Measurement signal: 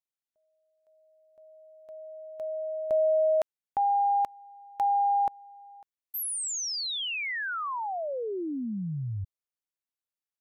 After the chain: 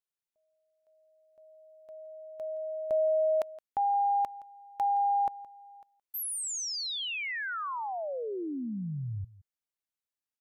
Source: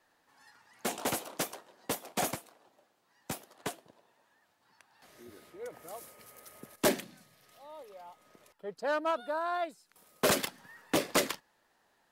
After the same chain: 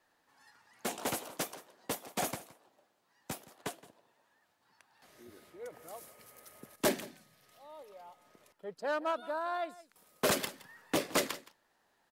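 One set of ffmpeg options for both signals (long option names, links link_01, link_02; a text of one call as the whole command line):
ffmpeg -i in.wav -af "aecho=1:1:169:0.112,volume=-2.5dB" out.wav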